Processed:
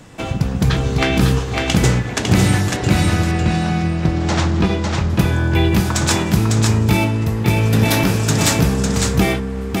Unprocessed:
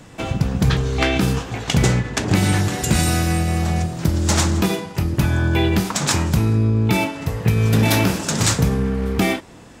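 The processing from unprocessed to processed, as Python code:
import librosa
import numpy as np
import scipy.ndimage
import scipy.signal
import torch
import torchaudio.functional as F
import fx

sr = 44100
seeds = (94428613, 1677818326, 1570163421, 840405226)

y = fx.lowpass(x, sr, hz=3900.0, slope=12, at=(2.76, 5.1))
y = y + 10.0 ** (-3.5 / 20.0) * np.pad(y, (int(552 * sr / 1000.0), 0))[:len(y)]
y = y * librosa.db_to_amplitude(1.0)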